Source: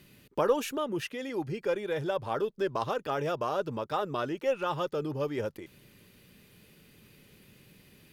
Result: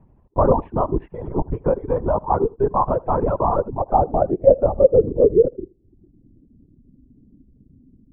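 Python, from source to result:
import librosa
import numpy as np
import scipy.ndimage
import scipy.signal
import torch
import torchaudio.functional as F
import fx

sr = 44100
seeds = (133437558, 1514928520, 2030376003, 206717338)

p1 = fx.law_mismatch(x, sr, coded='A')
p2 = fx.level_steps(p1, sr, step_db=17)
p3 = p1 + (p2 * librosa.db_to_amplitude(0.0))
p4 = fx.lpc_vocoder(p3, sr, seeds[0], excitation='whisper', order=8)
p5 = fx.tilt_shelf(p4, sr, db=8.5, hz=970.0)
p6 = p5 + fx.echo_single(p5, sr, ms=80, db=-12.5, dry=0)
p7 = fx.filter_sweep_lowpass(p6, sr, from_hz=970.0, to_hz=260.0, start_s=3.55, end_s=6.57, q=4.7)
p8 = fx.dereverb_blind(p7, sr, rt60_s=0.63)
y = p8 * librosa.db_to_amplitude(1.0)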